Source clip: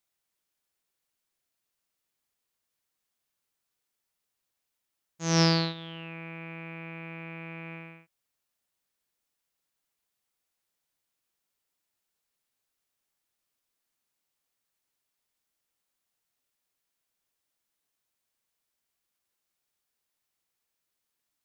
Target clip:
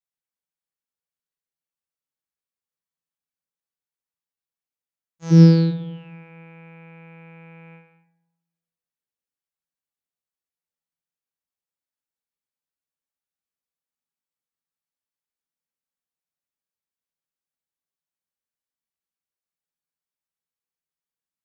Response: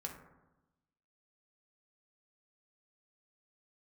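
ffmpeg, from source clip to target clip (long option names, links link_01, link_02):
-filter_complex "[0:a]agate=range=-7dB:threshold=-41dB:ratio=16:detection=peak,asplit=3[link_01][link_02][link_03];[link_01]afade=type=out:start_time=5.3:duration=0.02[link_04];[link_02]lowshelf=frequency=490:width_type=q:width=3:gain=12.5,afade=type=in:start_time=5.3:duration=0.02,afade=type=out:start_time=5.7:duration=0.02[link_05];[link_03]afade=type=in:start_time=5.7:duration=0.02[link_06];[link_04][link_05][link_06]amix=inputs=3:normalize=0[link_07];[1:a]atrim=start_sample=2205[link_08];[link_07][link_08]afir=irnorm=-1:irlink=0,volume=-3dB"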